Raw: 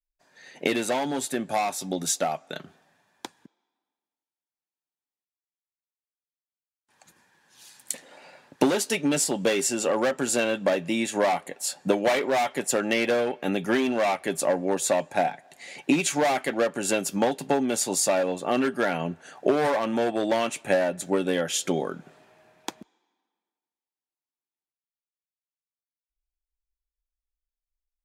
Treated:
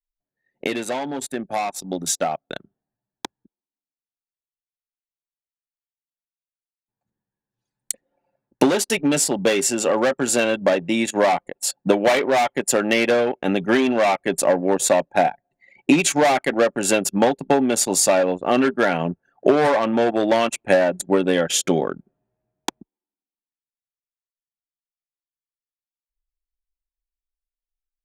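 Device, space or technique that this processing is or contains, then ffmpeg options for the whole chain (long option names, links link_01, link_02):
voice memo with heavy noise removal: -af "anlmdn=15.8,dynaudnorm=framelen=210:gausssize=21:maxgain=9dB"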